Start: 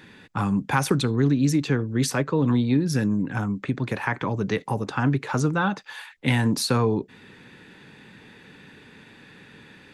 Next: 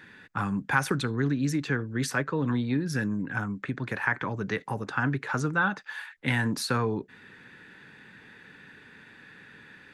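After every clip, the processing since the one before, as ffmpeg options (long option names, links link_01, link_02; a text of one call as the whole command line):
ffmpeg -i in.wav -af "equalizer=frequency=1600:width_type=o:width=0.79:gain=9.5,volume=-6.5dB" out.wav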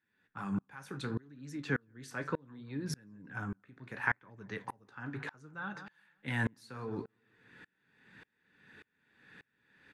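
ffmpeg -i in.wav -filter_complex "[0:a]flanger=delay=8.8:depth=8.8:regen=-59:speed=0.69:shape=sinusoidal,asplit=2[link_01][link_02];[link_02]adelay=174,lowpass=frequency=2800:poles=1,volume=-19dB,asplit=2[link_03][link_04];[link_04]adelay=174,lowpass=frequency=2800:poles=1,volume=0.46,asplit=2[link_05][link_06];[link_06]adelay=174,lowpass=frequency=2800:poles=1,volume=0.46,asplit=2[link_07][link_08];[link_08]adelay=174,lowpass=frequency=2800:poles=1,volume=0.46[link_09];[link_01][link_03][link_05][link_07][link_09]amix=inputs=5:normalize=0,aeval=exprs='val(0)*pow(10,-33*if(lt(mod(-1.7*n/s,1),2*abs(-1.7)/1000),1-mod(-1.7*n/s,1)/(2*abs(-1.7)/1000),(mod(-1.7*n/s,1)-2*abs(-1.7)/1000)/(1-2*abs(-1.7)/1000))/20)':channel_layout=same,volume=2dB" out.wav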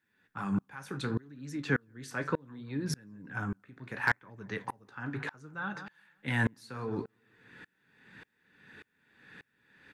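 ffmpeg -i in.wav -af "asoftclip=type=hard:threshold=-19.5dB,volume=4dB" out.wav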